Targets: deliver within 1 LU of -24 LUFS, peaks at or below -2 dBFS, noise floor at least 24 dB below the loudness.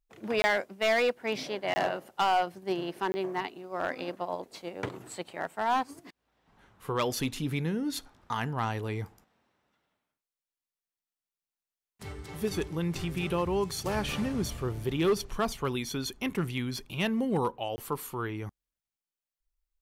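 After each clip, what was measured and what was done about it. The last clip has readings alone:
clipped 0.5%; flat tops at -20.5 dBFS; dropouts 4; longest dropout 20 ms; loudness -31.5 LUFS; peak -20.5 dBFS; loudness target -24.0 LUFS
-> clip repair -20.5 dBFS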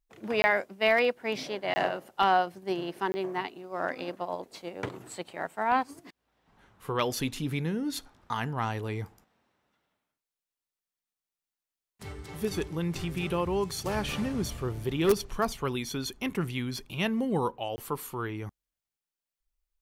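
clipped 0.0%; dropouts 4; longest dropout 20 ms
-> interpolate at 0.42/1.74/3.12/17.76, 20 ms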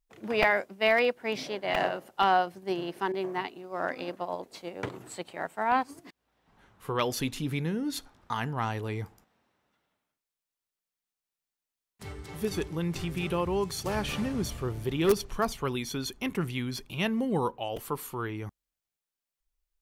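dropouts 0; loudness -30.5 LUFS; peak -9.5 dBFS; loudness target -24.0 LUFS
-> gain +6.5 dB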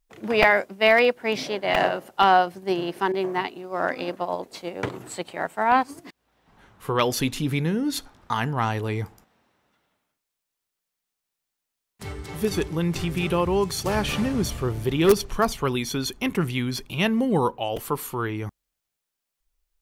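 loudness -24.0 LUFS; peak -3.0 dBFS; noise floor -84 dBFS

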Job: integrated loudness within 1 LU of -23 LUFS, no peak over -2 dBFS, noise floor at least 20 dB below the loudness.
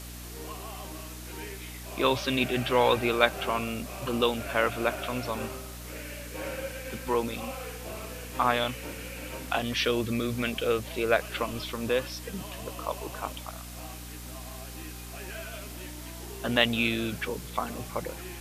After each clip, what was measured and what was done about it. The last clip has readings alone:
hum 60 Hz; harmonics up to 300 Hz; hum level -41 dBFS; noise floor -41 dBFS; noise floor target -50 dBFS; loudness -30.0 LUFS; peak -3.5 dBFS; loudness target -23.0 LUFS
-> notches 60/120/180/240/300 Hz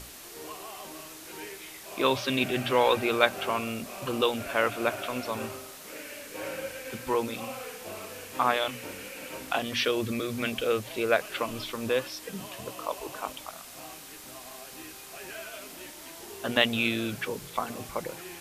hum none; noise floor -46 dBFS; noise floor target -50 dBFS
-> noise print and reduce 6 dB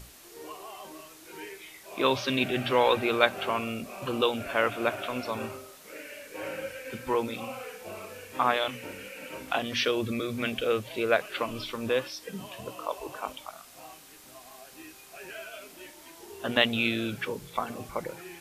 noise floor -51 dBFS; loudness -29.5 LUFS; peak -4.0 dBFS; loudness target -23.0 LUFS
-> gain +6.5 dB; limiter -2 dBFS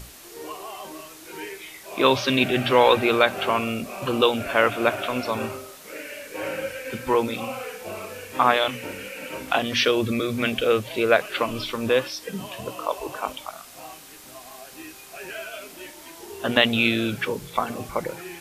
loudness -23.5 LUFS; peak -2.0 dBFS; noise floor -45 dBFS

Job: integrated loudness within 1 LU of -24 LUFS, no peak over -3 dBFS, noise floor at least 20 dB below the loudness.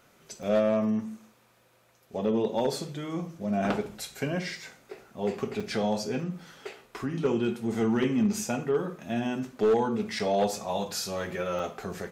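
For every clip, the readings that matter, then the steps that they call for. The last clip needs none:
clipped 0.5%; flat tops at -18.0 dBFS; dropouts 4; longest dropout 4.7 ms; loudness -29.5 LUFS; peak -18.0 dBFS; loudness target -24.0 LUFS
-> clip repair -18 dBFS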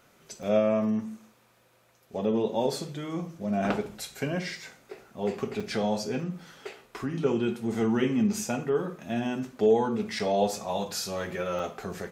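clipped 0.0%; dropouts 4; longest dropout 4.7 ms
-> interpolate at 0.43/5.6/10.19/11.59, 4.7 ms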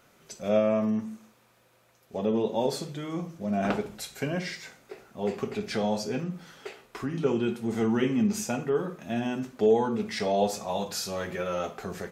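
dropouts 0; loudness -29.0 LUFS; peak -11.0 dBFS; loudness target -24.0 LUFS
-> gain +5 dB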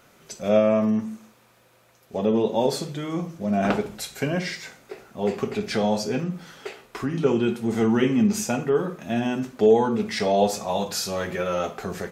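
loudness -24.0 LUFS; peak -6.0 dBFS; noise floor -58 dBFS

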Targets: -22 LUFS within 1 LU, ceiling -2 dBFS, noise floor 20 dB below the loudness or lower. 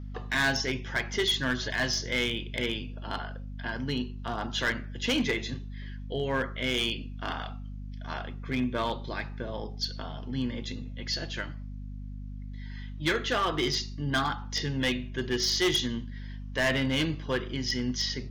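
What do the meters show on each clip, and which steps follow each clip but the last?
clipped 0.7%; flat tops at -21.0 dBFS; hum 50 Hz; harmonics up to 250 Hz; hum level -36 dBFS; loudness -30.0 LUFS; peak -21.0 dBFS; loudness target -22.0 LUFS
-> clip repair -21 dBFS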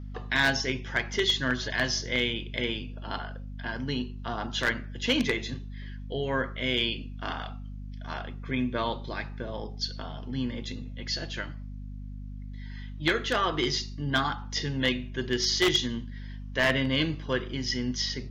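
clipped 0.0%; hum 50 Hz; harmonics up to 200 Hz; hum level -36 dBFS
-> notches 50/100/150/200 Hz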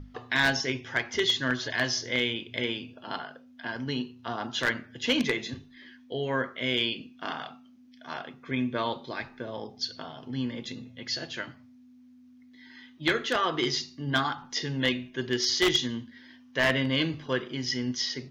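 hum none; loudness -29.5 LUFS; peak -11.5 dBFS; loudness target -22.0 LUFS
-> gain +7.5 dB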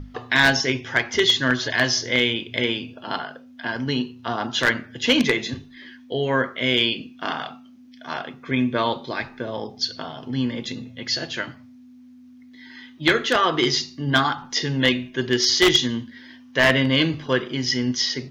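loudness -22.0 LUFS; peak -4.0 dBFS; noise floor -47 dBFS

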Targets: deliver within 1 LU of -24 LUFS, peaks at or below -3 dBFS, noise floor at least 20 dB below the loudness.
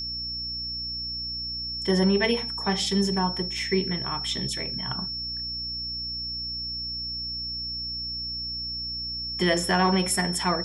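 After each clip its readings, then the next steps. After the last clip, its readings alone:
hum 60 Hz; harmonics up to 300 Hz; hum level -41 dBFS; steady tone 5400 Hz; tone level -30 dBFS; loudness -26.5 LUFS; peak -8.0 dBFS; loudness target -24.0 LUFS
-> de-hum 60 Hz, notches 5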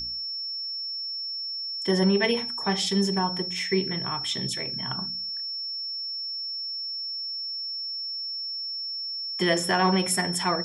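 hum none; steady tone 5400 Hz; tone level -30 dBFS
-> notch 5400 Hz, Q 30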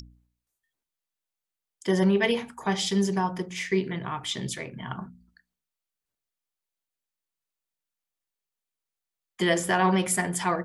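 steady tone none; loudness -26.5 LUFS; peak -9.0 dBFS; loudness target -24.0 LUFS
-> gain +2.5 dB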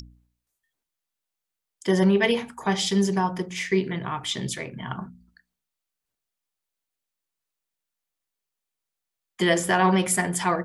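loudness -24.0 LUFS; peak -6.5 dBFS; noise floor -85 dBFS

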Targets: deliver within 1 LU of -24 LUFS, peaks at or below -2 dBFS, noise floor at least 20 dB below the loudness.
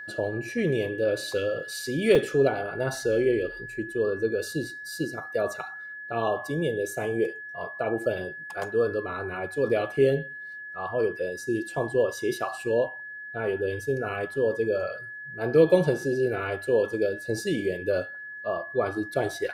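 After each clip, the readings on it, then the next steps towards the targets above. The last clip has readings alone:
dropouts 1; longest dropout 3.6 ms; steady tone 1700 Hz; tone level -37 dBFS; loudness -27.5 LUFS; peak -7.0 dBFS; loudness target -24.0 LUFS
-> interpolate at 2.15, 3.6 ms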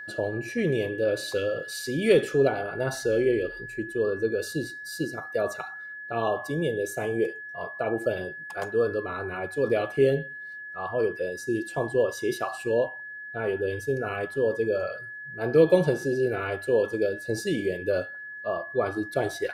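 dropouts 0; steady tone 1700 Hz; tone level -37 dBFS
-> notch 1700 Hz, Q 30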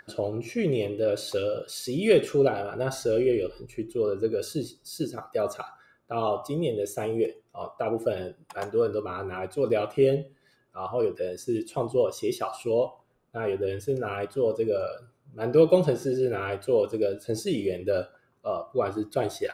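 steady tone none; loudness -27.5 LUFS; peak -7.5 dBFS; loudness target -24.0 LUFS
-> gain +3.5 dB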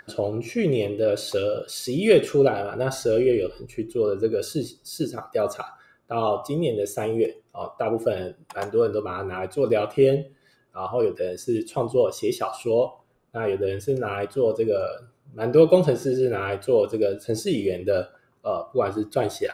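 loudness -24.0 LUFS; peak -4.0 dBFS; noise floor -64 dBFS

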